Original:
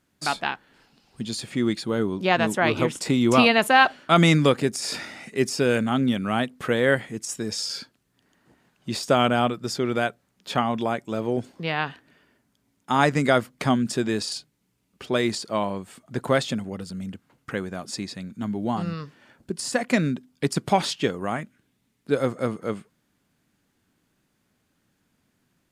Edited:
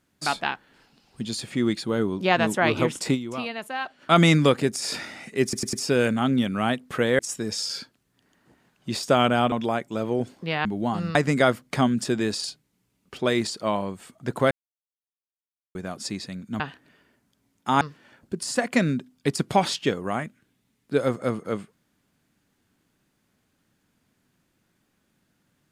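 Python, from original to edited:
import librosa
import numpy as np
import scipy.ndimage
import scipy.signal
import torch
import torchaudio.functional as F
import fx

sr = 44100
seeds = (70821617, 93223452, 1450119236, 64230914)

y = fx.edit(x, sr, fx.fade_down_up(start_s=3.14, length_s=0.89, db=-14.5, fade_s=0.28, curve='exp'),
    fx.stutter(start_s=5.43, slice_s=0.1, count=4),
    fx.cut(start_s=6.89, length_s=0.3),
    fx.cut(start_s=9.52, length_s=1.17),
    fx.swap(start_s=11.82, length_s=1.21, other_s=18.48, other_length_s=0.5),
    fx.silence(start_s=16.39, length_s=1.24), tone=tone)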